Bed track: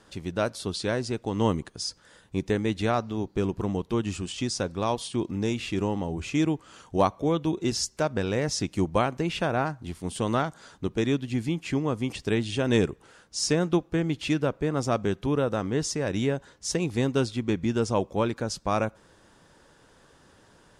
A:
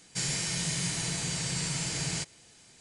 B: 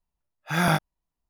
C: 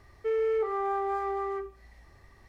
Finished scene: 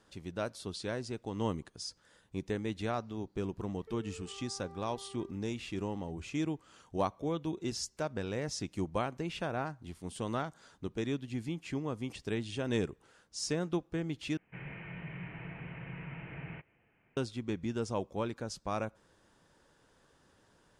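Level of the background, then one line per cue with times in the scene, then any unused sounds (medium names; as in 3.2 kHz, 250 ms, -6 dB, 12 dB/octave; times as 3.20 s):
bed track -9.5 dB
3.63 s: add C -13 dB + compression, threshold -36 dBFS
14.37 s: replace with A -8.5 dB + steep low-pass 2.7 kHz 72 dB/octave
not used: B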